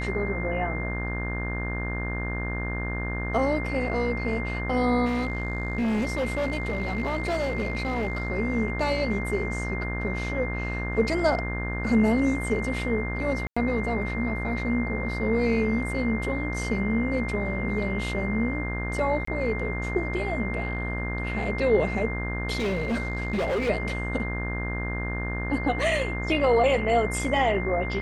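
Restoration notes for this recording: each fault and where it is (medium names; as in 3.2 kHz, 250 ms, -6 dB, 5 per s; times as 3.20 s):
buzz 60 Hz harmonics 31 -31 dBFS
whine 2.1 kHz -33 dBFS
5.05–8.30 s: clipped -22.5 dBFS
13.47–13.56 s: dropout 95 ms
19.25–19.27 s: dropout 24 ms
22.56–23.70 s: clipped -23 dBFS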